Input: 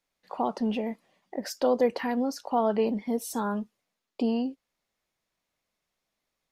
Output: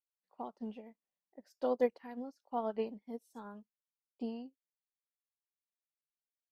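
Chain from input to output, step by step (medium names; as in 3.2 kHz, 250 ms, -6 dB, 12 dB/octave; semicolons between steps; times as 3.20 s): upward expansion 2.5:1, over -38 dBFS; trim -5 dB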